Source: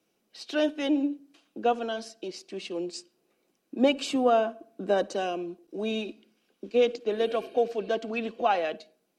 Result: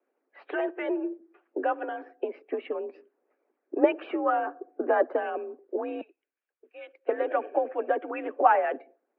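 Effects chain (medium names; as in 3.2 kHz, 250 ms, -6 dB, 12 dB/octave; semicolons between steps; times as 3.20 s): 6.01–7.09 s: differentiator; spectral noise reduction 9 dB; in parallel at 0 dB: compression, threshold -36 dBFS, peak gain reduction 17.5 dB; on the sum: harmonic-percussive split harmonic -12 dB; mistuned SSB +53 Hz 210–2000 Hz; trim +6 dB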